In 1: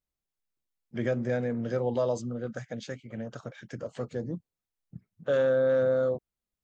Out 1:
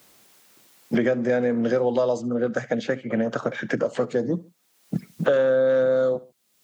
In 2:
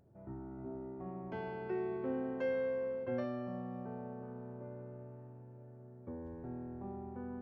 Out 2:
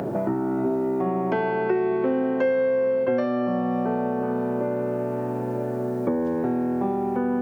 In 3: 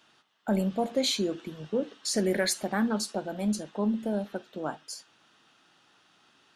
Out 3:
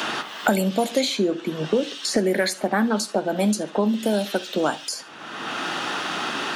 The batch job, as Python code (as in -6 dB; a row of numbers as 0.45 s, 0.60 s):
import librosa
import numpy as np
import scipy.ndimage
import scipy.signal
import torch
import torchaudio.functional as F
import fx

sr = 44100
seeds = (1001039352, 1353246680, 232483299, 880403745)

y = scipy.signal.sosfilt(scipy.signal.butter(2, 200.0, 'highpass', fs=sr, output='sos'), x)
y = fx.echo_feedback(y, sr, ms=69, feedback_pct=29, wet_db=-22)
y = fx.band_squash(y, sr, depth_pct=100)
y = y * 10.0 ** (-24 / 20.0) / np.sqrt(np.mean(np.square(y)))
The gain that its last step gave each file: +7.0 dB, +17.0 dB, +8.5 dB